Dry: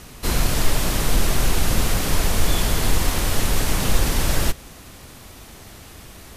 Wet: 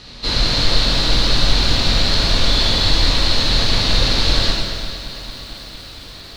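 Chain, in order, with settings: synth low-pass 4200 Hz, resonance Q 6.9; non-linear reverb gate 0.5 s falling, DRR -2.5 dB; lo-fi delay 0.228 s, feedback 80%, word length 6-bit, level -14 dB; gain -2.5 dB

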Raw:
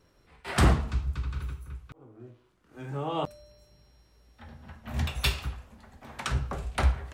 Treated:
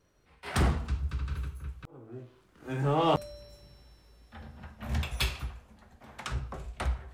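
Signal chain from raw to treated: Doppler pass-by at 3.03, 13 m/s, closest 9.9 m; in parallel at -4 dB: hard clip -32 dBFS, distortion -9 dB; on the sum: gain +3 dB

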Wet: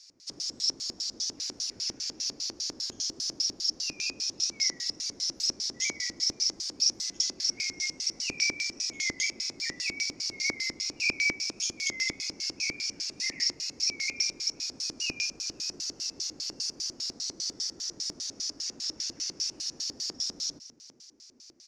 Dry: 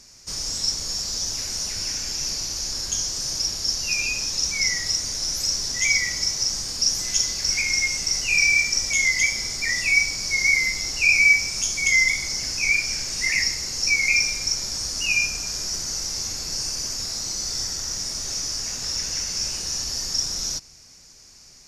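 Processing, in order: frequency-shifting echo 0.468 s, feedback 64%, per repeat +110 Hz, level -22 dB; LFO band-pass square 5 Hz 310–4300 Hz

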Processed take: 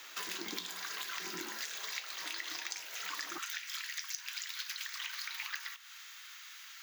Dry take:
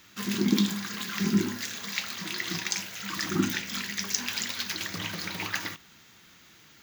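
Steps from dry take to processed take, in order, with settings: HPF 450 Hz 24 dB/oct, from 3.38 s 1200 Hz; compressor 6:1, threshold -44 dBFS, peak gain reduction 21 dB; frequency shift -23 Hz; gain +5.5 dB

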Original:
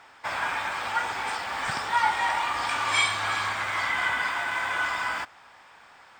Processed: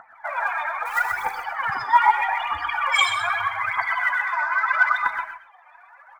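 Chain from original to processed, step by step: reverb removal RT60 0.7 s; loudest bins only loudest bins 32; 0.85–1.31 short-mantissa float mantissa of 2-bit; phaser 0.79 Hz, delay 3.4 ms, feedback 76%; 4.26–4.93 speaker cabinet 260–7500 Hz, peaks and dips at 510 Hz -8 dB, 1300 Hz +6 dB, 2700 Hz -5 dB, 4900 Hz +7 dB; echo 0.127 s -9.5 dB; non-linear reverb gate 0.15 s rising, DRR 8.5 dB; gain +2 dB

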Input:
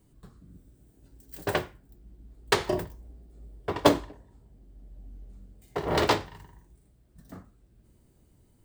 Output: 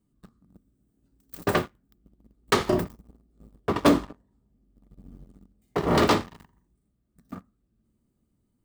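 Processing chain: sample leveller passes 3; small resonant body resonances 220/1200 Hz, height 10 dB, ringing for 30 ms; gain -8 dB

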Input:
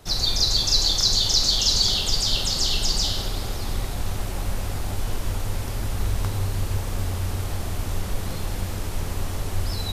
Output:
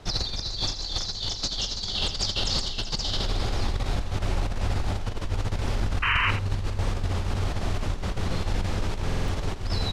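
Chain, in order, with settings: LPF 5100 Hz 12 dB/oct; negative-ratio compressor -26 dBFS, ratio -0.5; painted sound noise, 6.02–6.31, 910–3100 Hz -24 dBFS; on a send: echo 83 ms -11 dB; on the sum: stuck buffer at 9.05, samples 2048, times 4

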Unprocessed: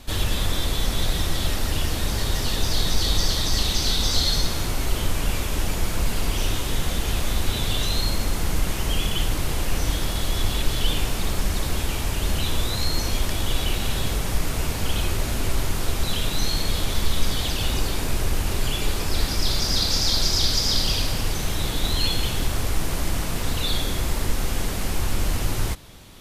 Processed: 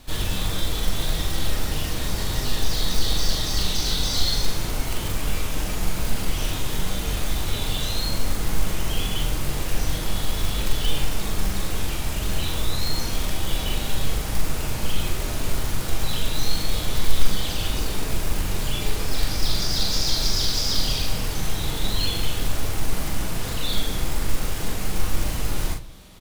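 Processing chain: short-mantissa float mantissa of 2-bit; doubler 42 ms -4.5 dB; reverb RT60 0.40 s, pre-delay 6 ms, DRR 10 dB; gain -3.5 dB

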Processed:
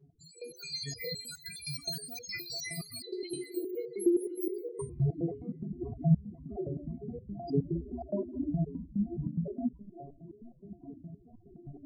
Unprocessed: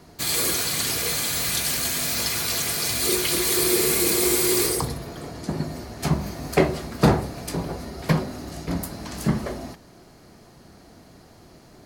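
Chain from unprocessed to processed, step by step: notches 60/120/180/240/300 Hz; 7.75–8.49 comb 3.1 ms, depth 84%; compressor 4:1, threshold -32 dBFS, peak gain reduction 16.5 dB; sample leveller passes 2; AGC gain up to 15.5 dB; loudest bins only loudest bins 4; on a send: narrowing echo 0.526 s, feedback 77%, band-pass 1100 Hz, level -23 dB; on the sum: stepped resonator 9.6 Hz 140–500 Hz

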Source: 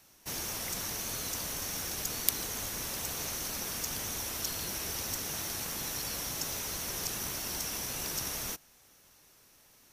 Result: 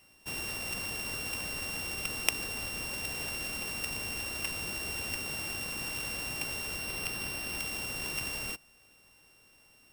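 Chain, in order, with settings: sample sorter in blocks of 16 samples; 6.79–7.58 notch 7000 Hz, Q 5.8

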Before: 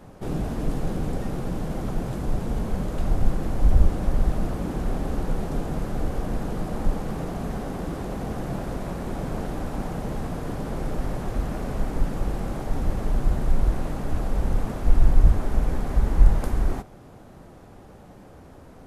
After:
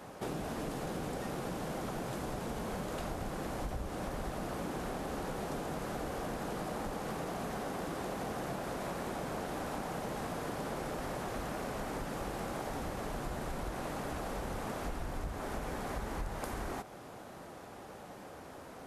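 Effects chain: HPF 84 Hz 6 dB/oct; low shelf 340 Hz -12 dB; compressor, threshold -39 dBFS, peak gain reduction 12 dB; gain +4 dB

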